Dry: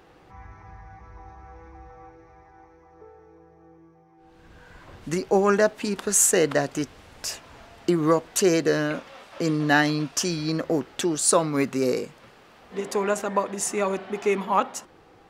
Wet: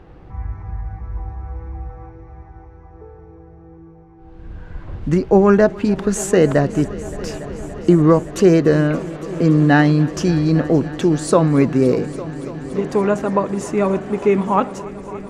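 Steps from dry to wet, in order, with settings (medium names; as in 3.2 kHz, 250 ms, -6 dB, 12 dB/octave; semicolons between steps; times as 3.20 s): RIAA curve playback; on a send: multi-head delay 285 ms, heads all three, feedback 74%, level -22 dB; on the sum: trim +4 dB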